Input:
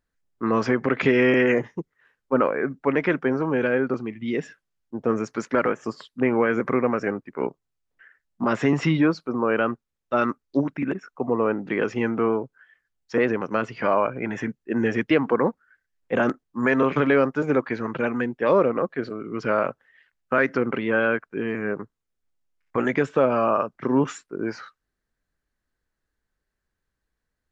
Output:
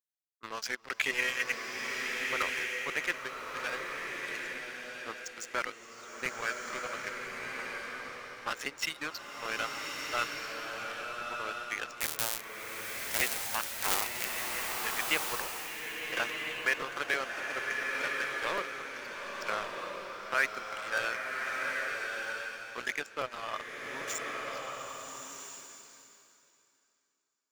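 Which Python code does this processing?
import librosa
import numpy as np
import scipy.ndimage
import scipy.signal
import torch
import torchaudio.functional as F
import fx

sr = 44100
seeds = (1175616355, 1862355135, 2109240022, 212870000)

y = fx.cycle_switch(x, sr, every=3, mode='inverted', at=(12.0, 14.39), fade=0.02)
y = scipy.signal.sosfilt(scipy.signal.butter(2, 140.0, 'highpass', fs=sr, output='sos'), y)
y = fx.low_shelf(y, sr, hz=410.0, db=-6.0)
y = fx.dereverb_blind(y, sr, rt60_s=1.9)
y = np.diff(y, prepend=0.0)
y = y + 10.0 ** (-23.5 / 20.0) * np.pad(y, (int(1072 * sr / 1000.0), 0))[:len(y)]
y = fx.leveller(y, sr, passes=3)
y = fx.buffer_crackle(y, sr, first_s=0.81, period_s=0.16, block=256, kind='repeat')
y = fx.rev_bloom(y, sr, seeds[0], attack_ms=1350, drr_db=0.0)
y = y * 10.0 ** (-2.5 / 20.0)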